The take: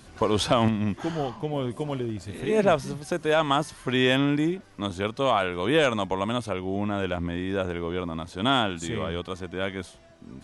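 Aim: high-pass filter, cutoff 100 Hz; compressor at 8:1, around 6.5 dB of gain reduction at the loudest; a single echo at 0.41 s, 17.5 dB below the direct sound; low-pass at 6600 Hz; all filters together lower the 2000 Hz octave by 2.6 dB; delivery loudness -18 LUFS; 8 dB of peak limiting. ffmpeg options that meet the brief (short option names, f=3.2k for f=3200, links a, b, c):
-af "highpass=100,lowpass=6.6k,equalizer=f=2k:t=o:g=-3.5,acompressor=threshold=-23dB:ratio=8,alimiter=limit=-19.5dB:level=0:latency=1,aecho=1:1:410:0.133,volume=13.5dB"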